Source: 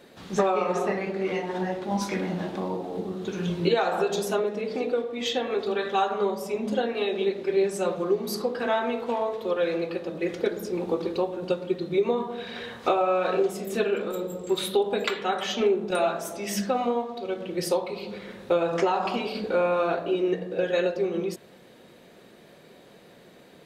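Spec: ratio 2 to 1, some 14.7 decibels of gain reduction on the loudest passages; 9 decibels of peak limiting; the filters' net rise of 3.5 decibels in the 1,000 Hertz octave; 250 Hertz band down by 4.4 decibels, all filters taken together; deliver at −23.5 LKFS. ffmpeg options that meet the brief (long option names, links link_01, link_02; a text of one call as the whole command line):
ffmpeg -i in.wav -af "equalizer=frequency=250:width_type=o:gain=-8,equalizer=frequency=1000:width_type=o:gain=5.5,acompressor=threshold=-46dB:ratio=2,volume=17.5dB,alimiter=limit=-13dB:level=0:latency=1" out.wav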